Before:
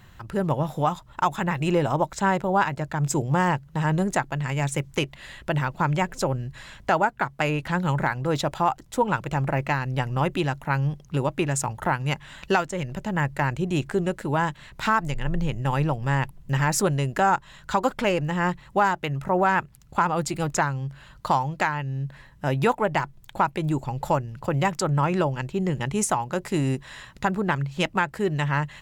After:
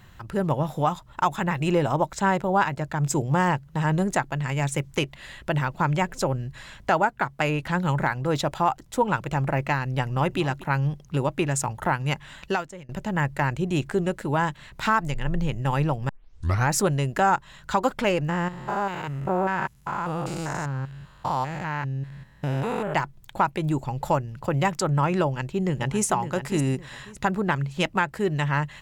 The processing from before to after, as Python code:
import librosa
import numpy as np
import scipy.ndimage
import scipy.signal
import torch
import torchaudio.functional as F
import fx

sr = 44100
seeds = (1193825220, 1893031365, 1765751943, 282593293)

y = fx.echo_throw(x, sr, start_s=9.98, length_s=0.41, ms=240, feedback_pct=15, wet_db=-16.0)
y = fx.spec_steps(y, sr, hold_ms=200, at=(18.29, 22.94))
y = fx.echo_throw(y, sr, start_s=25.25, length_s=0.79, ms=560, feedback_pct=30, wet_db=-10.0)
y = fx.edit(y, sr, fx.fade_out_to(start_s=12.3, length_s=0.59, floor_db=-22.5),
    fx.tape_start(start_s=16.09, length_s=0.62), tone=tone)